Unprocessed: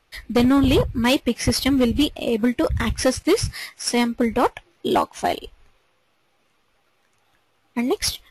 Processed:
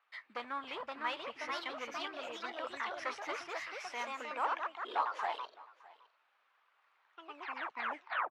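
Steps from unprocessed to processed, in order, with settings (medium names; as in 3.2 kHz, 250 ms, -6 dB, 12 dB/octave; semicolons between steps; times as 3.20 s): tape stop on the ending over 0.49 s; peak limiter -17.5 dBFS, peak gain reduction 6 dB; ever faster or slower copies 562 ms, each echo +2 st, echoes 3; ladder band-pass 1.4 kHz, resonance 30%; on a send: delay 612 ms -22 dB; on the sum: trim +3 dB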